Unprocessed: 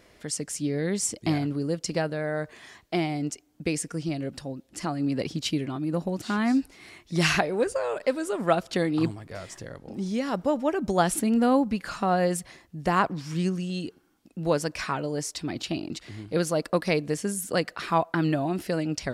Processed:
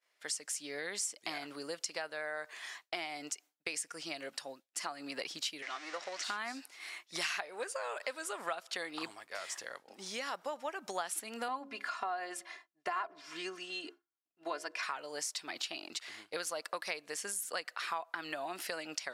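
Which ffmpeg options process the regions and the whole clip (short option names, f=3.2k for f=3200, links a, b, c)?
-filter_complex "[0:a]asettb=1/sr,asplit=3[a][b][c];[a]atrim=end=5.624[d];[b]atrim=start=5.62:end=6.24,asetpts=PTS-STARTPTS,afade=t=in:d=0.004:c=qsin,afade=t=out:st=0.616:d=0.004:c=qsin,aeval=exprs='val(0)+0.5*0.0126*sgn(val(0))':c=same,highpass=490,equalizer=f=910:t=q:w=4:g=-6,equalizer=f=2k:t=q:w=4:g=8,equalizer=f=5.6k:t=q:w=4:g=5,lowpass=f=7.1k:w=0.5412,lowpass=f=7.1k:w=1.3066[e];[c]atrim=start=6.236[f];[d][e]acrossfade=d=0.004:c1=hsin:c2=qsin[g];[g][f]acrossfade=d=0.004:c1=qsin:c2=hsin,asettb=1/sr,asplit=3[h][i][j];[h]atrim=end=11.484[k];[i]atrim=start=11.48:end=14.83,asetpts=PTS-STARTPTS,afade=t=in:d=0.004:c=qsin,afade=t=out:st=3.346:d=0.004:c=qsin,lowpass=f=2.1k:p=1,aecho=1:1:2.9:0.71,atrim=end_sample=147735,bandreject=f=68.96:t=h:w=4,bandreject=f=137.92:t=h:w=4,bandreject=f=206.88:t=h:w=4,bandreject=f=275.84:t=h:w=4,bandreject=f=344.8:t=h:w=4,bandreject=f=413.76:t=h:w=4,bandreject=f=482.72:t=h:w=4,bandreject=f=551.68:t=h:w=4,bandreject=f=620.64:t=h:w=4,bandreject=f=689.6:t=h:w=4[l];[j]atrim=start=14.826[m];[k][l]acrossfade=d=0.004:c1=hsin:c2=qsin[n];[n][m]acrossfade=d=0.004:c1=qsin:c2=hsin,highpass=950,agate=range=-33dB:threshold=-48dB:ratio=3:detection=peak,acompressor=threshold=-40dB:ratio=4,volume=3.5dB"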